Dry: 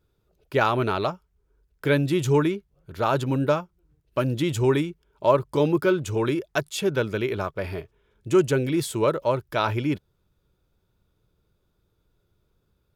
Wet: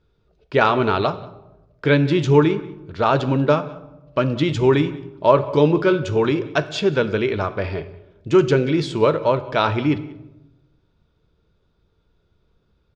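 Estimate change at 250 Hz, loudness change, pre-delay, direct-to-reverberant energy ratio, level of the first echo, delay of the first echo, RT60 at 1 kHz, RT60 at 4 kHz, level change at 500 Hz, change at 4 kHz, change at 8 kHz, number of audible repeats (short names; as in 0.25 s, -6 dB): +5.0 dB, +5.0 dB, 4 ms, 10.0 dB, -22.5 dB, 0.186 s, 0.90 s, 0.60 s, +5.5 dB, +5.0 dB, n/a, 1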